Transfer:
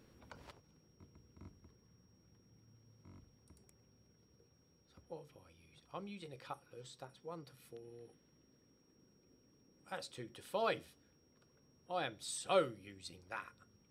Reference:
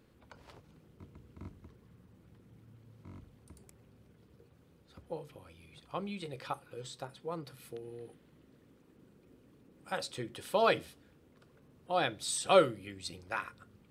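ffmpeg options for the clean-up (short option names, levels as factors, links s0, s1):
-af "bandreject=f=5600:w=30,asetnsamples=n=441:p=0,asendcmd='0.51 volume volume 8.5dB',volume=1"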